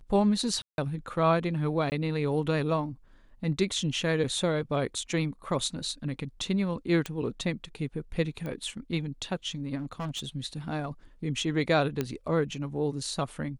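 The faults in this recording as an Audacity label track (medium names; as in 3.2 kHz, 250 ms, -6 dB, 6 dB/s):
0.620000	0.780000	dropout 161 ms
1.900000	1.920000	dropout 19 ms
7.060000	7.060000	pop -17 dBFS
8.460000	8.460000	pop -25 dBFS
9.770000	10.280000	clipped -30 dBFS
12.010000	12.010000	pop -15 dBFS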